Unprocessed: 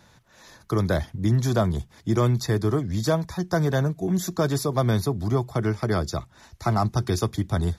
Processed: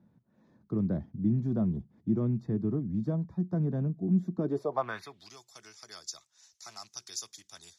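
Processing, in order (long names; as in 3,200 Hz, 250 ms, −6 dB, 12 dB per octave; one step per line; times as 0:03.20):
loose part that buzzes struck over −21 dBFS, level −35 dBFS
band-pass filter sweep 210 Hz → 6,200 Hz, 0:04.36–0:05.37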